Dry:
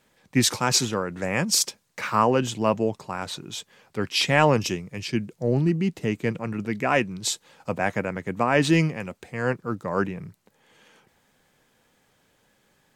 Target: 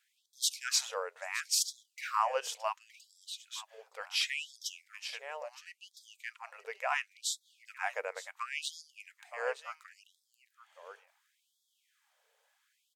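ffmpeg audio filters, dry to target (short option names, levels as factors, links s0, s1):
-af "aecho=1:1:918:0.168,afftfilt=real='re*gte(b*sr/1024,400*pow(3300/400,0.5+0.5*sin(2*PI*0.71*pts/sr)))':imag='im*gte(b*sr/1024,400*pow(3300/400,0.5+0.5*sin(2*PI*0.71*pts/sr)))':win_size=1024:overlap=0.75,volume=0.398"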